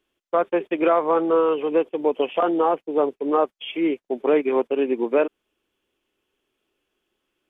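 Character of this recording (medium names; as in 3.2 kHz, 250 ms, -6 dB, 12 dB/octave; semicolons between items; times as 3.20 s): noise floor -84 dBFS; spectral tilt -0.5 dB/octave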